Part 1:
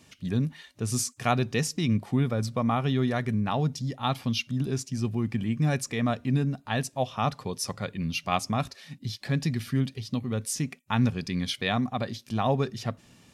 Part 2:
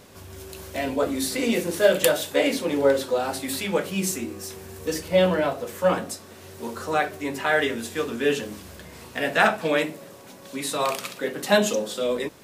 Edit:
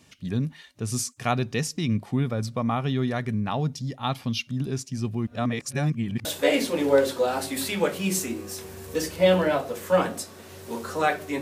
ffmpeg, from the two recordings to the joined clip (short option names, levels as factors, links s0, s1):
-filter_complex "[0:a]apad=whole_dur=11.41,atrim=end=11.41,asplit=2[s0][s1];[s0]atrim=end=5.272[s2];[s1]atrim=start=5.268:end=6.252,asetpts=PTS-STARTPTS,areverse[s3];[1:a]atrim=start=2.168:end=7.33[s4];[s2][s3]acrossfade=d=0.004:c1=hsin:c2=hsin[s5];[s5][s4]acrossfade=d=0.004:c1=hsin:c2=hsin"